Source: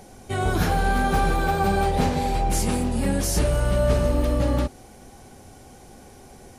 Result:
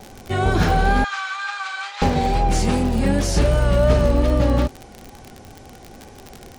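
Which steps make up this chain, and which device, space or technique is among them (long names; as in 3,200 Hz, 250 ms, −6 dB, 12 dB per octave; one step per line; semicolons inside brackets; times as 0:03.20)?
lo-fi chain (low-pass filter 6,100 Hz 12 dB per octave; tape wow and flutter; surface crackle 54 per second −29 dBFS)
0:01.04–0:02.02: Chebyshev band-pass filter 1,200–7,400 Hz, order 3
level +4.5 dB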